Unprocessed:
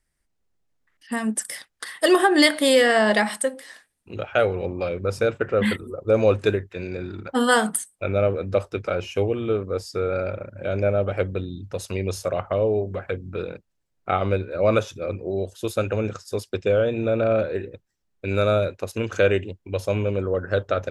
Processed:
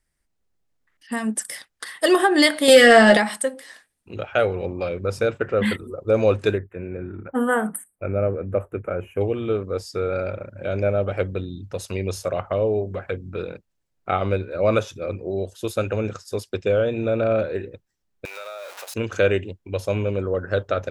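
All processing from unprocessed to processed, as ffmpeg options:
ffmpeg -i in.wav -filter_complex "[0:a]asettb=1/sr,asplit=3[link_01][link_02][link_03];[link_01]atrim=end=2.684[link_04];[link_02]atrim=start=2.68:end=3.17,asetpts=PTS-STARTPTS,afade=type=in:duration=0.004:curve=qsin,afade=type=out:start_time=0.486:duration=0.004:curve=qsin,asplit=2[link_05][link_06];[link_06]adelay=13,volume=-6dB[link_07];[link_05][link_07]amix=inputs=2:normalize=0,atrim=end_sample=21609,acontrast=68,asuperstop=centerf=1000:order=8:qfactor=5.5[link_08];[link_03]atrim=start=3.166[link_09];[link_04][link_08]acrossfade=duration=0.004:curve1=hsin:curve2=qsin[link_10];[link_10][link_09]acrossfade=duration=0.004:curve1=qsin:curve2=hsin,asettb=1/sr,asplit=3[link_11][link_12][link_13];[link_11]atrim=end=6.584[link_14];[link_12]atrim=start=6.58:end=9.21,asetpts=PTS-STARTPTS,afade=type=in:duration=0.004:curve=qsin,afade=type=out:start_time=2.626:duration=0.004:curve=qsin,asuperstop=centerf=4800:order=4:qfactor=0.51,equalizer=frequency=920:width=1.1:gain=-4[link_15];[link_13]atrim=start=9.206[link_16];[link_14][link_15]acrossfade=duration=0.004:curve1=hsin:curve2=qsin[link_17];[link_17][link_16]acrossfade=duration=0.004:curve1=qsin:curve2=hsin,asettb=1/sr,asplit=3[link_18][link_19][link_20];[link_18]atrim=end=18.254[link_21];[link_19]atrim=start=18.25:end=18.94,asetpts=PTS-STARTPTS,afade=type=in:duration=0.004:curve=qsin,afade=type=out:start_time=0.686:duration=0.004:curve=qsin,aeval=exprs='val(0)+0.5*0.0473*sgn(val(0))':channel_layout=same,highpass=frequency=640:width=0.5412,highpass=frequency=640:width=1.3066,acompressor=threshold=-33dB:ratio=5:attack=3.2:release=140:knee=1:detection=peak[link_22];[link_20]atrim=start=18.936[link_23];[link_21][link_22]acrossfade=duration=0.004:curve1=hsin:curve2=qsin[link_24];[link_24][link_23]acrossfade=duration=0.004:curve1=qsin:curve2=hsin" out.wav

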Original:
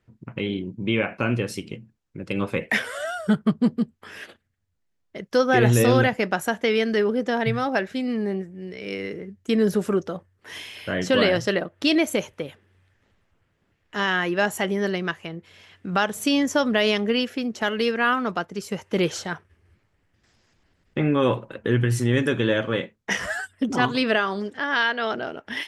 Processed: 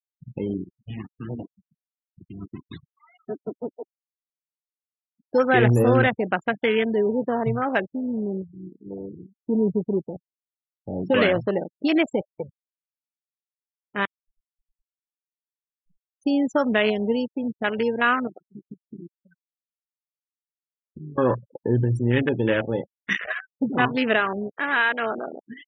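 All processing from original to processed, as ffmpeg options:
ffmpeg -i in.wav -filter_complex "[0:a]asettb=1/sr,asplit=3[link_01][link_02][link_03];[link_01]atrim=end=0.644[link_04];[link_02]atrim=start=0.64:end=5.28,asetpts=PTS-STARTPTS,afade=type=in:duration=0.004:curve=qsin,afade=type=out:start_time=4.636:duration=0.004:curve=qsin,aeval=exprs='abs(val(0))':channel_layout=same,highpass=frequency=120:width=0.5412,highpass=frequency=120:width=1.3066,equalizer=frequency=390:width_type=q:width=4:gain=-8,equalizer=frequency=590:width_type=q:width=4:gain=-10,equalizer=frequency=2300:width_type=q:width=4:gain=-5,lowpass=frequency=3700:width=0.5412,lowpass=frequency=3700:width=1.3066[link_05];[link_03]atrim=start=5.276[link_06];[link_04][link_05]acrossfade=duration=0.004:curve1=hsin:curve2=qsin[link_07];[link_07][link_06]acrossfade=duration=0.004:curve1=qsin:curve2=hsin,asettb=1/sr,asplit=3[link_08][link_09][link_10];[link_08]atrim=end=7.814[link_11];[link_09]atrim=start=7.81:end=11.03,asetpts=PTS-STARTPTS,afade=type=in:duration=0.004:curve=qsin,afade=type=out:start_time=3.216:duration=0.004:curve=qsin,equalizer=frequency=2100:width_type=o:width=2.6:gain=-11,adynamicsmooth=sensitivity=1.5:basefreq=820[link_12];[link_10]atrim=start=11.026[link_13];[link_11][link_12]acrossfade=duration=0.004:curve1=hsin:curve2=qsin[link_14];[link_14][link_13]acrossfade=duration=0.004:curve1=qsin:curve2=hsin,asettb=1/sr,asplit=3[link_15][link_16][link_17];[link_15]atrim=end=14.054[link_18];[link_16]atrim=start=14.05:end=16.21,asetpts=PTS-STARTPTS,afade=type=in:duration=0.004:curve=qsin,afade=type=out:start_time=2.156:duration=0.004:curve=qsin,acompressor=threshold=-36dB:ratio=20:attack=3.2:release=140:knee=1:detection=peak,acrusher=bits=4:dc=4:mix=0:aa=0.000001[link_19];[link_17]atrim=start=16.206[link_20];[link_18][link_19]acrossfade=duration=0.004:curve1=hsin:curve2=qsin[link_21];[link_21][link_20]acrossfade=duration=0.004:curve1=qsin:curve2=hsin,asettb=1/sr,asplit=3[link_22][link_23][link_24];[link_22]atrim=end=18.274[link_25];[link_23]atrim=start=18.27:end=21.18,asetpts=PTS-STARTPTS,afade=type=in:duration=0.004:curve=qsin,afade=type=out:start_time=2.906:duration=0.004:curve=qsin,highpass=43,aecho=1:1:5.3:0.71,atrim=end_sample=128331,acompressor=threshold=-33dB:ratio=10:attack=3.2:release=140:knee=1:detection=peak[link_26];[link_24]atrim=start=21.176[link_27];[link_25][link_26]acrossfade=duration=0.004:curve1=hsin:curve2=qsin[link_28];[link_28][link_27]acrossfade=duration=0.004:curve1=qsin:curve2=hsin,afwtdn=0.0562,afftfilt=real='re*gte(hypot(re,im),0.0126)':imag='im*gte(hypot(re,im),0.0126)':win_size=1024:overlap=0.75,highshelf=frequency=3600:gain=9.5" out.wav

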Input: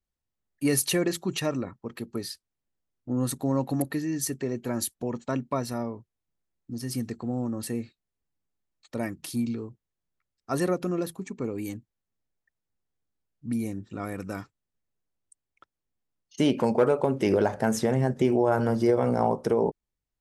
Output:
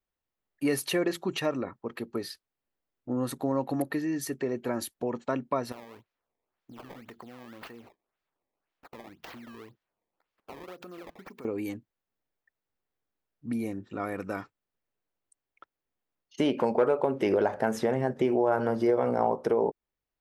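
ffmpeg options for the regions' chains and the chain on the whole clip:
ffmpeg -i in.wav -filter_complex "[0:a]asettb=1/sr,asplit=3[link_01][link_02][link_03];[link_01]atrim=end=5.724[link_04];[link_02]atrim=start=5.72:end=11.45,asetpts=PTS-STARTPTS,afade=type=in:duration=0.004:curve=qsin,afade=type=out:start_time=5.726:duration=0.004:curve=qsin,tiltshelf=frequency=1100:gain=-5,acompressor=threshold=-42dB:ratio=10:attack=3.2:release=140:knee=1:detection=peak,acrusher=samples=18:mix=1:aa=0.000001:lfo=1:lforange=28.8:lforate=1.9[link_05];[link_03]atrim=start=11.446[link_06];[link_04][link_05]acrossfade=duration=0.004:curve1=hsin:curve2=qsin[link_07];[link_07][link_06]acrossfade=duration=0.004:curve1=qsin:curve2=hsin,bass=frequency=250:gain=-10,treble=frequency=4000:gain=-2,acompressor=threshold=-32dB:ratio=1.5,equalizer=frequency=8000:width_type=o:width=1.7:gain=-10,volume=4dB" out.wav

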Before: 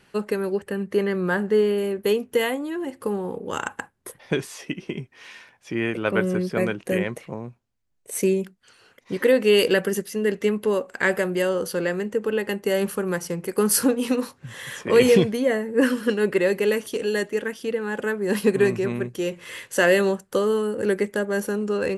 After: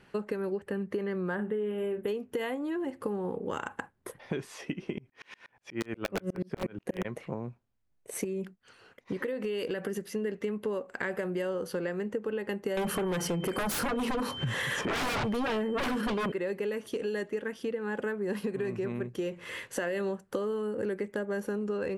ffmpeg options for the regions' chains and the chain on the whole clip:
ffmpeg -i in.wav -filter_complex "[0:a]asettb=1/sr,asplit=3[link_01][link_02][link_03];[link_01]atrim=end=1.354[link_04];[link_02]atrim=start=1.35:end=2.08,asetpts=PTS-STARTPTS,afade=type=in:duration=0.004:curve=qsin,afade=type=out:start_time=0.726:duration=0.004:curve=qsin,asuperstop=centerf=5400:order=20:qfactor=1.6,asplit=2[link_05][link_06];[link_06]adelay=38,volume=-9dB[link_07];[link_05][link_07]amix=inputs=2:normalize=0,atrim=end_sample=32193[link_08];[link_03]atrim=start=2.076[link_09];[link_04][link_08]acrossfade=duration=0.004:curve1=hsin:curve2=qsin[link_10];[link_10][link_09]acrossfade=duration=0.004:curve1=qsin:curve2=hsin,asettb=1/sr,asplit=3[link_11][link_12][link_13];[link_11]atrim=end=4.984[link_14];[link_12]atrim=start=4.98:end=7.05,asetpts=PTS-STARTPTS,afade=type=in:duration=0.004:curve=qsin,afade=type=out:start_time=2.066:duration=0.004:curve=qsin,acontrast=34,aeval=exprs='(mod(2.66*val(0)+1,2)-1)/2.66':channel_layout=same,aeval=exprs='val(0)*pow(10,-35*if(lt(mod(-8.3*n/s,1),2*abs(-8.3)/1000),1-mod(-8.3*n/s,1)/(2*abs(-8.3)/1000),(mod(-8.3*n/s,1)-2*abs(-8.3)/1000)/(1-2*abs(-8.3)/1000))/20)':channel_layout=same[link_15];[link_13]atrim=start=7.046[link_16];[link_14][link_15]acrossfade=duration=0.004:curve1=hsin:curve2=qsin[link_17];[link_17][link_16]acrossfade=duration=0.004:curve1=qsin:curve2=hsin,asettb=1/sr,asplit=3[link_18][link_19][link_20];[link_18]atrim=end=8.244[link_21];[link_19]atrim=start=8.24:end=10.13,asetpts=PTS-STARTPTS,afade=type=in:duration=0.004:curve=qsin,afade=type=out:start_time=1.886:duration=0.004:curve=qsin,acompressor=threshold=-25dB:ratio=4:attack=3.2:release=140:knee=1:detection=peak,agate=range=-6dB:threshold=-59dB:ratio=16:release=100:detection=peak[link_22];[link_20]atrim=start=10.126[link_23];[link_21][link_22]acrossfade=duration=0.004:curve1=hsin:curve2=qsin[link_24];[link_24][link_23]acrossfade=duration=0.004:curve1=qsin:curve2=hsin,asettb=1/sr,asplit=3[link_25][link_26][link_27];[link_25]atrim=end=12.774[link_28];[link_26]atrim=start=12.77:end=16.32,asetpts=PTS-STARTPTS,afade=type=in:duration=0.004:curve=qsin,afade=type=out:start_time=3.546:duration=0.004:curve=qsin,aeval=exprs='0.668*sin(PI/2*8.91*val(0)/0.668)':channel_layout=same,aeval=exprs='val(0)+0.0447*sin(2*PI*3100*n/s)':channel_layout=same[link_29];[link_27]atrim=start=16.316[link_30];[link_28][link_29]acrossfade=duration=0.004:curve1=hsin:curve2=qsin[link_31];[link_31][link_30]acrossfade=duration=0.004:curve1=qsin:curve2=hsin,highshelf=frequency=3600:gain=-10.5,alimiter=limit=-14dB:level=0:latency=1:release=43,acompressor=threshold=-30dB:ratio=6" out.wav

